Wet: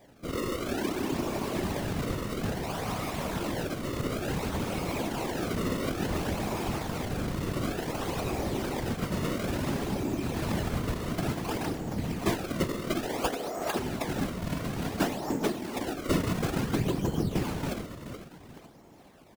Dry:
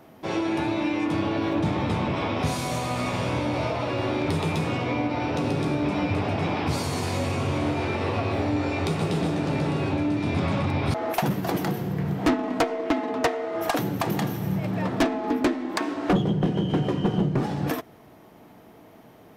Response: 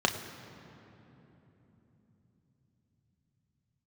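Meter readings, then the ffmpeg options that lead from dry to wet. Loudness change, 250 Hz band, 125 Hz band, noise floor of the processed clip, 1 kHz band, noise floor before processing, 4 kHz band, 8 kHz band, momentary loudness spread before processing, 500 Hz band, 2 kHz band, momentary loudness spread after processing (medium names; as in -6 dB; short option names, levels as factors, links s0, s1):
-6.0 dB, -6.0 dB, -6.5 dB, -52 dBFS, -6.5 dB, -50 dBFS, -3.5 dB, +0.5 dB, 3 LU, -5.5 dB, -5.5 dB, 4 LU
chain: -af "aecho=1:1:429|858|1287|1716:0.316|0.12|0.0457|0.0174,acrusher=samples=31:mix=1:aa=0.000001:lfo=1:lforange=49.6:lforate=0.57,afftfilt=real='hypot(re,im)*cos(2*PI*random(0))':imag='hypot(re,im)*sin(2*PI*random(1))':win_size=512:overlap=0.75"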